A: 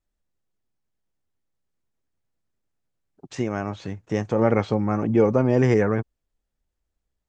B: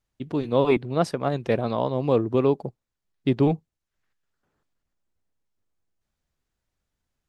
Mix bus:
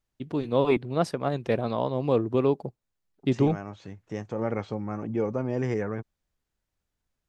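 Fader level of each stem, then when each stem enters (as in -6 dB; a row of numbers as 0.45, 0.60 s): -9.5, -2.5 dB; 0.00, 0.00 s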